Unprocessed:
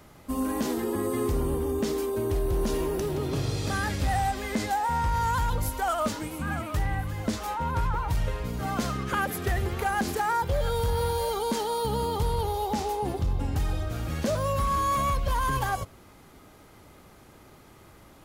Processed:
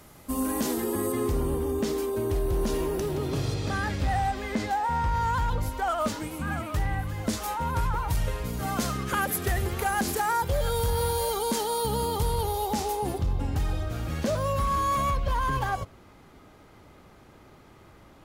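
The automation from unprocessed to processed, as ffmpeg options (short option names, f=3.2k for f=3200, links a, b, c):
-af "asetnsamples=n=441:p=0,asendcmd='1.12 equalizer g 0;3.54 equalizer g -9;6 equalizer g -0.5;7.27 equalizer g 7.5;13.18 equalizer g -2;15.11 equalizer g -9',equalizer=f=12k:t=o:w=1.6:g=7.5"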